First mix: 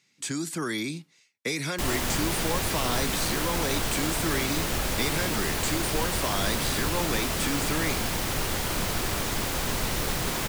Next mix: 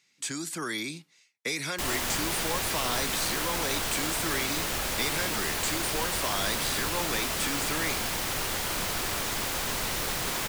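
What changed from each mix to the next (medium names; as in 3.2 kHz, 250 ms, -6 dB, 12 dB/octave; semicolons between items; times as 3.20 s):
master: add bass shelf 430 Hz -8 dB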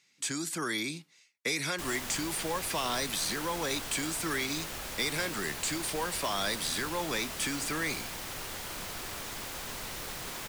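background -9.0 dB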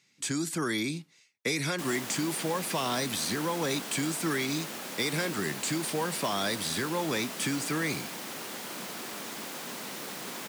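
background: add Chebyshev high-pass 200 Hz, order 3; master: add bass shelf 430 Hz +8 dB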